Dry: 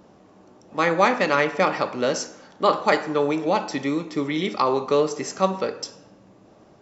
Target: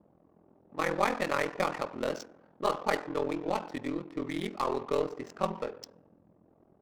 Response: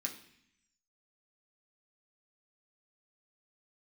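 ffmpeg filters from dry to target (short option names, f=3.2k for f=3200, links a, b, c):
-af "adynamicsmooth=sensitivity=4.5:basefreq=870,aeval=exprs='val(0)*sin(2*PI*21*n/s)':c=same,aeval=exprs='0.562*(cos(1*acos(clip(val(0)/0.562,-1,1)))-cos(1*PI/2))+0.0158*(cos(8*acos(clip(val(0)/0.562,-1,1)))-cos(8*PI/2))':c=same,volume=-7dB"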